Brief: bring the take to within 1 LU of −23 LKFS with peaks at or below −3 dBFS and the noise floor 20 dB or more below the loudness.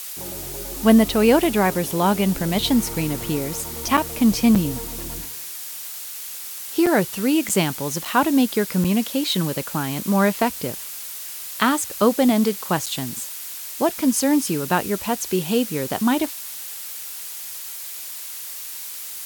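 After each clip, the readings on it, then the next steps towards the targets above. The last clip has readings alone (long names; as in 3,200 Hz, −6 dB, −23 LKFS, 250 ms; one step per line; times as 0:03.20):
number of dropouts 7; longest dropout 6.1 ms; background noise floor −34 dBFS; target noise floor −42 dBFS; integrated loudness −22.0 LKFS; sample peak −1.5 dBFS; target loudness −23.0 LKFS
→ repair the gap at 0:03.97/0:04.55/0:06.86/0:07.49/0:08.05/0:08.84/0:12.86, 6.1 ms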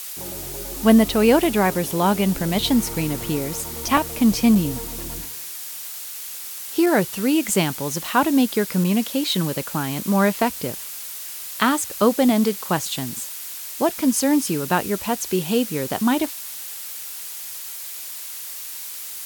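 number of dropouts 0; background noise floor −34 dBFS; target noise floor −42 dBFS
→ noise reduction from a noise print 8 dB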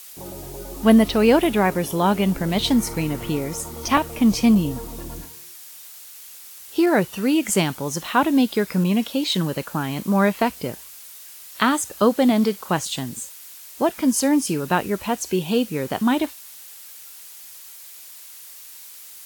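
background noise floor −42 dBFS; integrated loudness −21.0 LKFS; sample peak −2.0 dBFS; target loudness −23.0 LKFS
→ level −2 dB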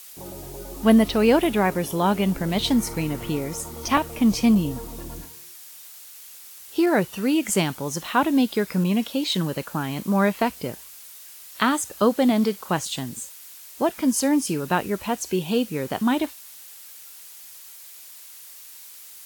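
integrated loudness −23.0 LKFS; sample peak −4.0 dBFS; background noise floor −44 dBFS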